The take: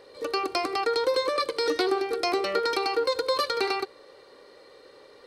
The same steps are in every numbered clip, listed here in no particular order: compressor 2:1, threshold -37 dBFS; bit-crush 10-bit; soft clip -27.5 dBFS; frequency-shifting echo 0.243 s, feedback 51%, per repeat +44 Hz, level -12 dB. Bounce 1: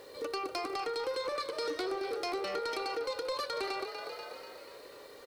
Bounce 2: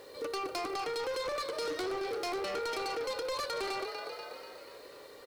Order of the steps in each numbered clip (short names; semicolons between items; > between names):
bit-crush > frequency-shifting echo > compressor > soft clip; frequency-shifting echo > soft clip > bit-crush > compressor